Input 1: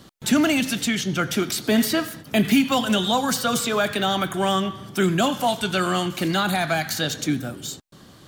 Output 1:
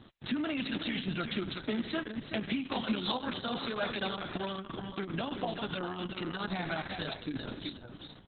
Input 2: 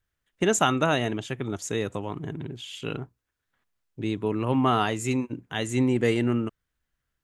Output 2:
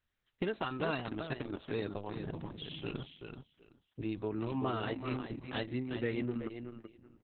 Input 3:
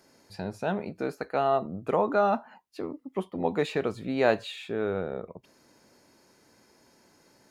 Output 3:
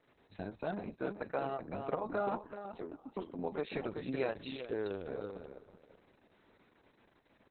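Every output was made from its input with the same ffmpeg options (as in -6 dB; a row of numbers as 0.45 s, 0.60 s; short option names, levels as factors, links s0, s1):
-af "acompressor=threshold=0.0562:ratio=6,aecho=1:1:380|760|1140:0.447|0.0759|0.0129,volume=0.531" -ar 48000 -c:a libopus -b:a 6k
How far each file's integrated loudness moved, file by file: -13.5 LU, -12.0 LU, -10.5 LU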